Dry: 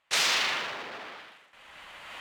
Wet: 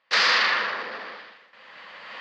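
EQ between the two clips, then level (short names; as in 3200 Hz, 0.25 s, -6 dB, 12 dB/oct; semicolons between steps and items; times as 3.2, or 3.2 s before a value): dynamic EQ 1400 Hz, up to +6 dB, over -43 dBFS, Q 1.2; speaker cabinet 140–5200 Hz, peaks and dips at 210 Hz +7 dB, 500 Hz +9 dB, 1100 Hz +5 dB, 1800 Hz +7 dB, 4700 Hz +9 dB; 0.0 dB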